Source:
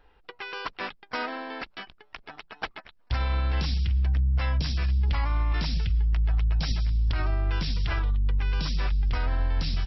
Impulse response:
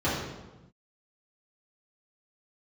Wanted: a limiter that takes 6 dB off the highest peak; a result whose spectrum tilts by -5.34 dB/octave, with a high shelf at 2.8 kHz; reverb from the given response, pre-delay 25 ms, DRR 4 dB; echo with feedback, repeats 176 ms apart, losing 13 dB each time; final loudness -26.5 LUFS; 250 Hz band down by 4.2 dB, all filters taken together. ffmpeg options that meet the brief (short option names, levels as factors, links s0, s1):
-filter_complex "[0:a]equalizer=f=250:t=o:g=-7,highshelf=f=2800:g=7,alimiter=limit=0.1:level=0:latency=1,aecho=1:1:176|352|528:0.224|0.0493|0.0108,asplit=2[s0][s1];[1:a]atrim=start_sample=2205,adelay=25[s2];[s1][s2]afir=irnorm=-1:irlink=0,volume=0.133[s3];[s0][s3]amix=inputs=2:normalize=0,volume=1.26"